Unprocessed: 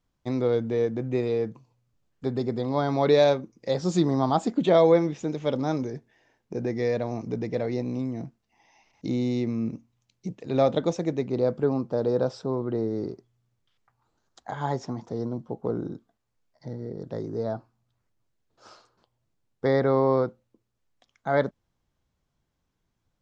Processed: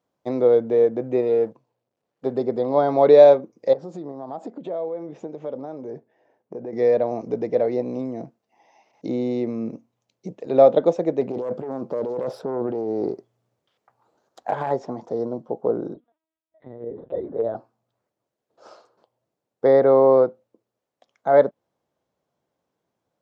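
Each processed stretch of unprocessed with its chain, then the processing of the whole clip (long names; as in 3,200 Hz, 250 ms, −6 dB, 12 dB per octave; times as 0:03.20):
0:01.21–0:02.32: mu-law and A-law mismatch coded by A + high-frequency loss of the air 60 metres
0:03.73–0:06.73: high-shelf EQ 2,500 Hz −11.5 dB + downward compressor 12 to 1, threshold −31 dBFS + shaped tremolo saw up 2.6 Hz, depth 30%
0:11.21–0:14.71: phase distortion by the signal itself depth 0.28 ms + compressor whose output falls as the input rises −31 dBFS
0:15.94–0:17.55: low shelf with overshoot 100 Hz +7.5 dB, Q 1.5 + auto-filter notch saw down 3.4 Hz 210–1,600 Hz + linear-prediction vocoder at 8 kHz pitch kept
whole clip: dynamic equaliser 6,100 Hz, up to −6 dB, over −53 dBFS, Q 1.2; high-pass filter 140 Hz; parametric band 570 Hz +13 dB 1.6 octaves; level −3 dB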